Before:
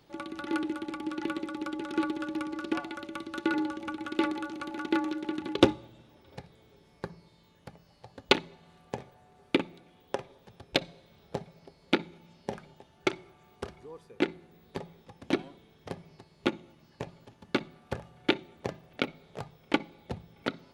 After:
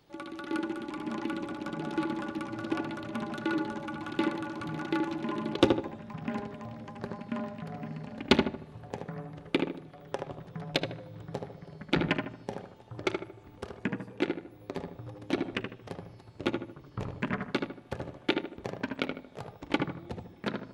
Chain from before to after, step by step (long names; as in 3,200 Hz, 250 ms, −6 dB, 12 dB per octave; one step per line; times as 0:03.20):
delay with pitch and tempo change per echo 353 ms, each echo −6 semitones, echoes 3, each echo −6 dB
feedback echo with a low-pass in the loop 76 ms, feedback 41%, low-pass 1,700 Hz, level −3.5 dB
level −2.5 dB